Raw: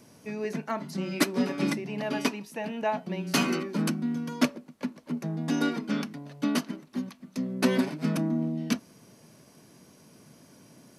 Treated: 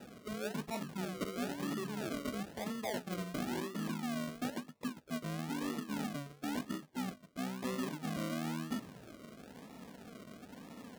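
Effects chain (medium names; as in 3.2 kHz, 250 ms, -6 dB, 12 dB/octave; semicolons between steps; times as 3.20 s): in parallel at +1 dB: peak limiter -22 dBFS, peak gain reduction 11 dB; on the sum: touch-sensitive flanger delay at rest 5.3 ms, full sweep at -22 dBFS; reverse; compression 5:1, threshold -37 dBFS, peak gain reduction 19 dB; reverse; decimation with a swept rate 40×, swing 60% 1 Hz; high-pass 98 Hz 6 dB/octave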